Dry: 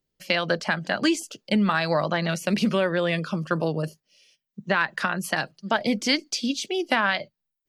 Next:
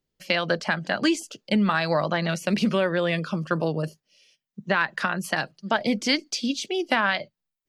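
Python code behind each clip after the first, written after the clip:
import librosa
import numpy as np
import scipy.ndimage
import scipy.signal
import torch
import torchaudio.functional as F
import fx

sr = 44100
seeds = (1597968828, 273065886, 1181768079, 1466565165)

y = fx.high_shelf(x, sr, hz=11000.0, db=-6.5)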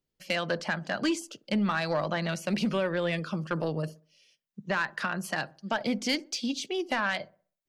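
y = 10.0 ** (-14.5 / 20.0) * np.tanh(x / 10.0 ** (-14.5 / 20.0))
y = fx.echo_wet_lowpass(y, sr, ms=63, feedback_pct=35, hz=910.0, wet_db=-17.0)
y = F.gain(torch.from_numpy(y), -4.0).numpy()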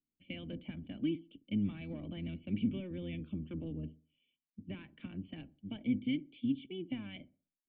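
y = fx.octave_divider(x, sr, octaves=1, level_db=-3.0)
y = fx.formant_cascade(y, sr, vowel='i')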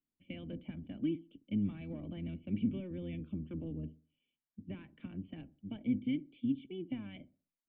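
y = fx.high_shelf(x, sr, hz=2700.0, db=-11.0)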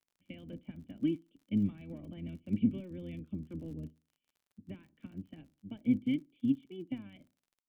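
y = fx.dmg_crackle(x, sr, seeds[0], per_s=48.0, level_db=-50.0)
y = fx.upward_expand(y, sr, threshold_db=-53.0, expansion=1.5)
y = F.gain(torch.from_numpy(y), 5.0).numpy()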